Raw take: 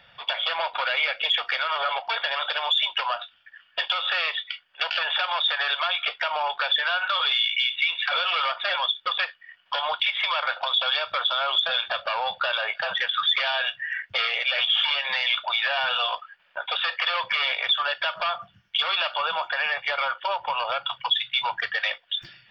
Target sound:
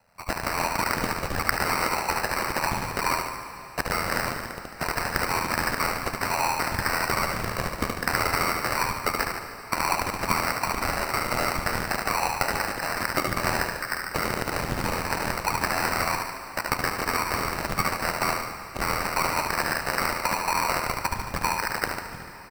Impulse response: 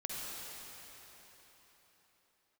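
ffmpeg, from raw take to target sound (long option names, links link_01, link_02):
-filter_complex "[0:a]equalizer=frequency=1100:width_type=o:width=1.6:gain=13.5,adynamicsmooth=sensitivity=0.5:basefreq=620,aexciter=amount=10.2:drive=5.5:freq=3800,acompressor=threshold=-18dB:ratio=6,aeval=exprs='val(0)*sin(2*PI*42*n/s)':channel_layout=same,aecho=1:1:73|146|219|292|365|438|511:0.631|0.347|0.191|0.105|0.0577|0.0318|0.0175,acrusher=samples=13:mix=1:aa=0.000001,asplit=2[link_01][link_02];[1:a]atrim=start_sample=2205[link_03];[link_02][link_03]afir=irnorm=-1:irlink=0,volume=-9dB[link_04];[link_01][link_04]amix=inputs=2:normalize=0,volume=-4.5dB"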